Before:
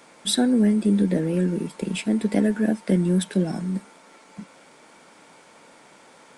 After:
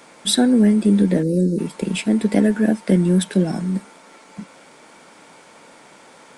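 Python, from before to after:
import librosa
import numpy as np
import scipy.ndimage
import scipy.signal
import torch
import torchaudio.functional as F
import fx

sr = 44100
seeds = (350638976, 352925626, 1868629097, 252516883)

y = fx.spec_box(x, sr, start_s=1.22, length_s=0.37, low_hz=600.0, high_hz=3700.0, gain_db=-21)
y = F.gain(torch.from_numpy(y), 4.5).numpy()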